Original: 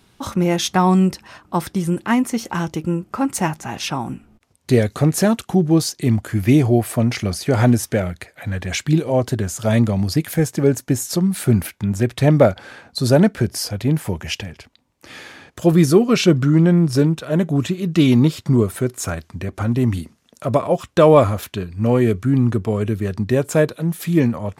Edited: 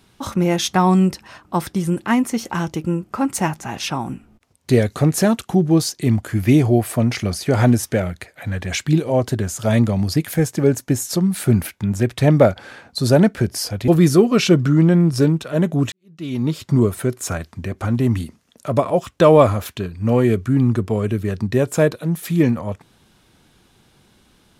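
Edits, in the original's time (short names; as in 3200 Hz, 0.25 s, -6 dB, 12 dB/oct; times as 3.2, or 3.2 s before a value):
13.88–15.65 cut
17.69–18.46 fade in quadratic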